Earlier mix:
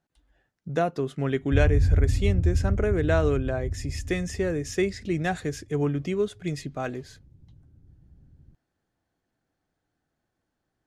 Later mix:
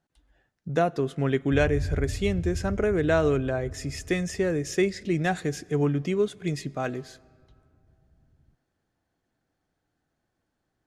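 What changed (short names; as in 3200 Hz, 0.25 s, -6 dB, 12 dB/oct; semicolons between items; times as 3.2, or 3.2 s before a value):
background -10.0 dB; reverb: on, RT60 2.6 s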